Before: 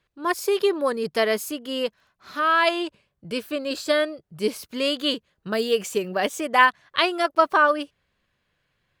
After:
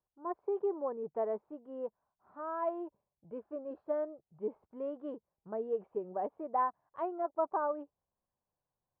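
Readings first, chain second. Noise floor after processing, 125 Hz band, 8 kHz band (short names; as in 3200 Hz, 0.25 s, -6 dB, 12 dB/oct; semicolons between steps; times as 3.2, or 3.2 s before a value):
under -85 dBFS, under -15 dB, under -40 dB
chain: dynamic EQ 390 Hz, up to +5 dB, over -33 dBFS, Q 1.3; ladder low-pass 970 Hz, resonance 60%; gain -8 dB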